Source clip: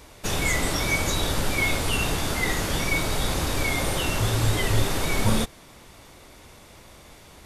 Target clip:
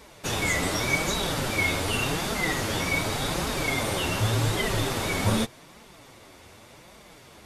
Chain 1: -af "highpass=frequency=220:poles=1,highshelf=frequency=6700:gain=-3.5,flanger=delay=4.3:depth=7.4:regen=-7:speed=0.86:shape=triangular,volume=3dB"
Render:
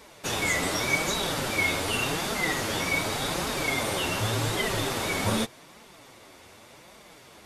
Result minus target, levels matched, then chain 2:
125 Hz band −4.0 dB
-af "highpass=frequency=85:poles=1,highshelf=frequency=6700:gain=-3.5,flanger=delay=4.3:depth=7.4:regen=-7:speed=0.86:shape=triangular,volume=3dB"

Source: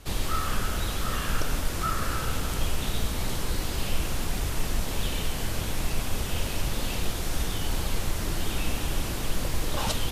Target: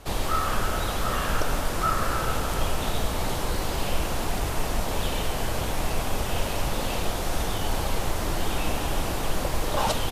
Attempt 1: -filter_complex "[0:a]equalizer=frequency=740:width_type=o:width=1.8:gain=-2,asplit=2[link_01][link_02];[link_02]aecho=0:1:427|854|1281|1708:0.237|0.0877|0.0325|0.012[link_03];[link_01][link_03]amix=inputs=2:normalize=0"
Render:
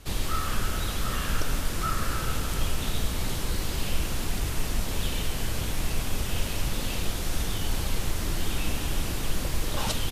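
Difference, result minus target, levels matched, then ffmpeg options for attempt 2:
1,000 Hz band −5.5 dB
-filter_complex "[0:a]equalizer=frequency=740:width_type=o:width=1.8:gain=8.5,asplit=2[link_01][link_02];[link_02]aecho=0:1:427|854|1281|1708:0.237|0.0877|0.0325|0.012[link_03];[link_01][link_03]amix=inputs=2:normalize=0"

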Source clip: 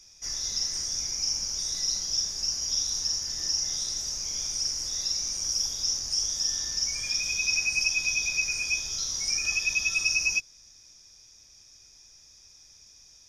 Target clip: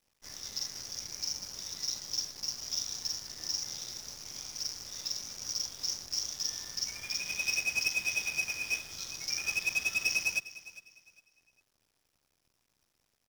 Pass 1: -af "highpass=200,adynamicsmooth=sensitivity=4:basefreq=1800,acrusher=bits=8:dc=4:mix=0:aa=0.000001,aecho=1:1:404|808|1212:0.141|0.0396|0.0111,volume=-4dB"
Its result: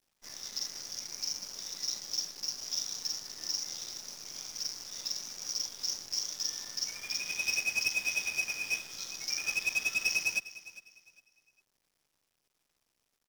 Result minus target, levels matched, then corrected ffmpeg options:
125 Hz band −5.5 dB
-af "highpass=85,adynamicsmooth=sensitivity=4:basefreq=1800,acrusher=bits=8:dc=4:mix=0:aa=0.000001,aecho=1:1:404|808|1212:0.141|0.0396|0.0111,volume=-4dB"

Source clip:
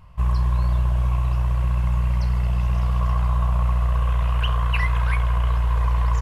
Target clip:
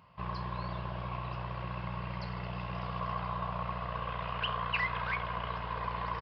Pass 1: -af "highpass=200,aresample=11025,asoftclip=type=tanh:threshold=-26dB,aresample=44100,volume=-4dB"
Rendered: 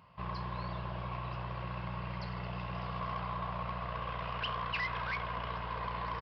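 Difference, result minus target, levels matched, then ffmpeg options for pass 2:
soft clipping: distortion +15 dB
-af "highpass=200,aresample=11025,asoftclip=type=tanh:threshold=-15.5dB,aresample=44100,volume=-4dB"

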